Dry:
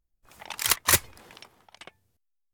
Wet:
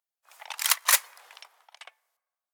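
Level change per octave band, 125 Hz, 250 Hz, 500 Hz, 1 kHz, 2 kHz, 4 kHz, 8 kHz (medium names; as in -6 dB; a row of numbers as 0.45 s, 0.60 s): under -40 dB, under -25 dB, -8.0 dB, 0.0 dB, 0.0 dB, 0.0 dB, 0.0 dB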